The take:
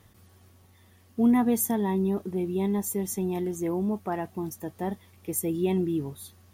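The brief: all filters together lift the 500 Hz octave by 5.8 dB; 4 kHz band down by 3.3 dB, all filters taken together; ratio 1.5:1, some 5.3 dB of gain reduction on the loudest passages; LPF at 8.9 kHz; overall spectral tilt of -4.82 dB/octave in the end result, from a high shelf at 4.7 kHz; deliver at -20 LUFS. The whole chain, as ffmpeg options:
-af "lowpass=8900,equalizer=f=500:t=o:g=8.5,equalizer=f=4000:t=o:g=-6.5,highshelf=f=4700:g=4,acompressor=threshold=0.0316:ratio=1.5,volume=2.82"

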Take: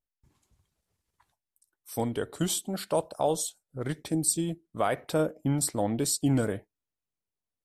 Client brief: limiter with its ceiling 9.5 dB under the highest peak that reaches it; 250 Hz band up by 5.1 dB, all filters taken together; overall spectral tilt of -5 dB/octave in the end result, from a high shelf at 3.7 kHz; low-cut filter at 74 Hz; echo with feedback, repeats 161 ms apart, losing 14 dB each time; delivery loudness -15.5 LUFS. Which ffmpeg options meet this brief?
-af "highpass=74,equalizer=f=250:t=o:g=6.5,highshelf=f=3700:g=-3.5,alimiter=limit=0.0891:level=0:latency=1,aecho=1:1:161|322:0.2|0.0399,volume=6.31"

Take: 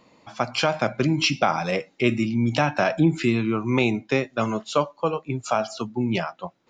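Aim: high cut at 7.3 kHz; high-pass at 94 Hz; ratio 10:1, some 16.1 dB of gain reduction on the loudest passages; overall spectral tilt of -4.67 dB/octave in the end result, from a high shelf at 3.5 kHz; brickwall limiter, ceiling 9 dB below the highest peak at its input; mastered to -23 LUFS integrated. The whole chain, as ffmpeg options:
-af "highpass=94,lowpass=7300,highshelf=f=3500:g=5.5,acompressor=threshold=0.0282:ratio=10,volume=5.01,alimiter=limit=0.282:level=0:latency=1"

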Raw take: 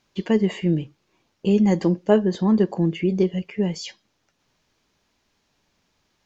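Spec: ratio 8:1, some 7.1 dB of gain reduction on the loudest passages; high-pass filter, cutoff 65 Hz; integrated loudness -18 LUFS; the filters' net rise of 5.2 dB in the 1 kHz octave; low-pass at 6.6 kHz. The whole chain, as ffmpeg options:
-af "highpass=65,lowpass=6600,equalizer=f=1000:t=o:g=6.5,acompressor=threshold=0.141:ratio=8,volume=2.11"

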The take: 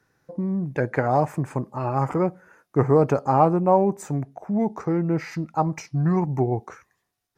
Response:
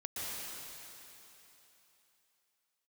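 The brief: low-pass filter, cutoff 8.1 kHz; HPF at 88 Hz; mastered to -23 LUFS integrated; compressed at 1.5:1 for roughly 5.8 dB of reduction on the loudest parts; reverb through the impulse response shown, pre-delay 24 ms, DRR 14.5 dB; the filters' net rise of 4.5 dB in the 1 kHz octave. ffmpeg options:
-filter_complex "[0:a]highpass=88,lowpass=8100,equalizer=f=1000:t=o:g=6,acompressor=threshold=0.0562:ratio=1.5,asplit=2[s0][s1];[1:a]atrim=start_sample=2205,adelay=24[s2];[s1][s2]afir=irnorm=-1:irlink=0,volume=0.133[s3];[s0][s3]amix=inputs=2:normalize=0,volume=1.33"

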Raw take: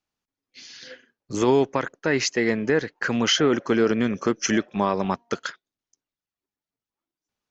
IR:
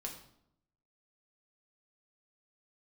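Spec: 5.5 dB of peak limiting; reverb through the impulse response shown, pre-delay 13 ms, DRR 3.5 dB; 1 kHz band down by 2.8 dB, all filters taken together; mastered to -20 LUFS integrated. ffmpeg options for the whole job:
-filter_complex "[0:a]equalizer=f=1000:t=o:g=-3.5,alimiter=limit=0.188:level=0:latency=1,asplit=2[s0][s1];[1:a]atrim=start_sample=2205,adelay=13[s2];[s1][s2]afir=irnorm=-1:irlink=0,volume=0.794[s3];[s0][s3]amix=inputs=2:normalize=0,volume=1.58"

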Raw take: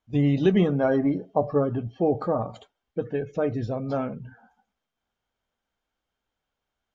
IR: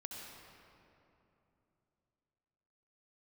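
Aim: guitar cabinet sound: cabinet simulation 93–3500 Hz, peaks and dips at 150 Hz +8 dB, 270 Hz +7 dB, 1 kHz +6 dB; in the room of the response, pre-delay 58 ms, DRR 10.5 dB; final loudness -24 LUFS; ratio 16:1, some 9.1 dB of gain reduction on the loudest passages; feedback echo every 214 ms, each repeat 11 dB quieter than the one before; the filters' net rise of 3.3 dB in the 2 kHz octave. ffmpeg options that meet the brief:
-filter_complex "[0:a]equalizer=f=2000:t=o:g=4,acompressor=threshold=0.0631:ratio=16,aecho=1:1:214|428|642:0.282|0.0789|0.0221,asplit=2[s0][s1];[1:a]atrim=start_sample=2205,adelay=58[s2];[s1][s2]afir=irnorm=-1:irlink=0,volume=0.376[s3];[s0][s3]amix=inputs=2:normalize=0,highpass=93,equalizer=f=150:t=q:w=4:g=8,equalizer=f=270:t=q:w=4:g=7,equalizer=f=1000:t=q:w=4:g=6,lowpass=f=3500:w=0.5412,lowpass=f=3500:w=1.3066,volume=1.33"

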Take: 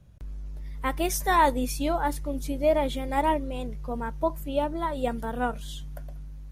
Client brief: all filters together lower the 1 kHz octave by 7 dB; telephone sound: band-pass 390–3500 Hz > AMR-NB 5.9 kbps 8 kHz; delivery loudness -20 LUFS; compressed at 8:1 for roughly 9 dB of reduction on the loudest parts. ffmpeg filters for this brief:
-af "equalizer=f=1000:t=o:g=-8,acompressor=threshold=0.0355:ratio=8,highpass=390,lowpass=3500,volume=9.44" -ar 8000 -c:a libopencore_amrnb -b:a 5900

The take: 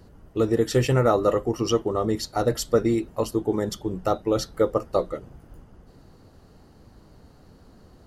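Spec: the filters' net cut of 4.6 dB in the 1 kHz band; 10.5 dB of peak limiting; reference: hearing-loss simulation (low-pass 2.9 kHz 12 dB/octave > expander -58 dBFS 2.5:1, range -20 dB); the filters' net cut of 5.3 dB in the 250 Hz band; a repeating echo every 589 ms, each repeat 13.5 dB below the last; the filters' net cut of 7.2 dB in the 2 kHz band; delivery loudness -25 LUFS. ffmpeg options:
-af "equalizer=f=250:t=o:g=-7.5,equalizer=f=1000:t=o:g=-4,equalizer=f=2000:t=o:g=-7,alimiter=limit=0.0794:level=0:latency=1,lowpass=2900,aecho=1:1:589|1178:0.211|0.0444,agate=range=0.1:threshold=0.00126:ratio=2.5,volume=2.51"

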